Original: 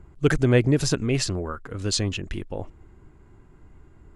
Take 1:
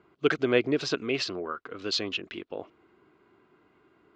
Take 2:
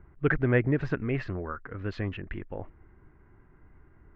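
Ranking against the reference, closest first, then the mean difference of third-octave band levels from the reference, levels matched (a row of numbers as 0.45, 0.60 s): 2, 1; 3.5, 5.0 dB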